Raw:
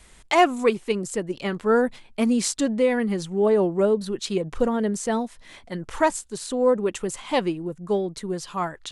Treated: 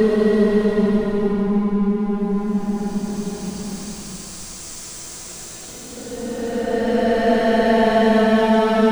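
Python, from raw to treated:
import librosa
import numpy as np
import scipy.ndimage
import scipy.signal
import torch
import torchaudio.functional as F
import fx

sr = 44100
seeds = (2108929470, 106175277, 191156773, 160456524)

y = fx.backlash(x, sr, play_db=-22.5)
y = fx.paulstretch(y, sr, seeds[0], factor=31.0, window_s=0.1, from_s=4.85)
y = y * librosa.db_to_amplitude(8.0)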